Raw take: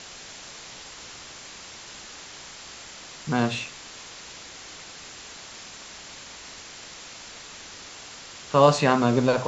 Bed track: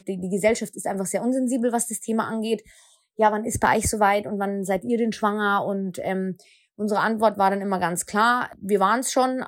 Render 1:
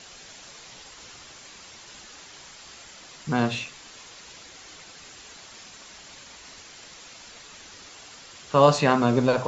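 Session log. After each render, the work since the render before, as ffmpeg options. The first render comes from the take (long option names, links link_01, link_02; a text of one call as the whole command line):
ffmpeg -i in.wav -af "afftdn=noise_reduction=6:noise_floor=-43" out.wav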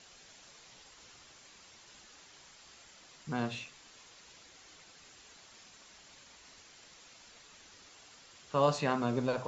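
ffmpeg -i in.wav -af "volume=-11dB" out.wav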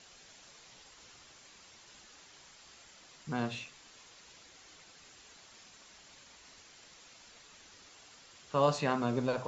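ffmpeg -i in.wav -af anull out.wav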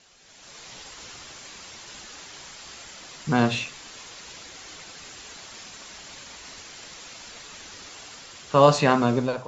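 ffmpeg -i in.wav -af "dynaudnorm=framelen=190:gausssize=5:maxgain=14dB" out.wav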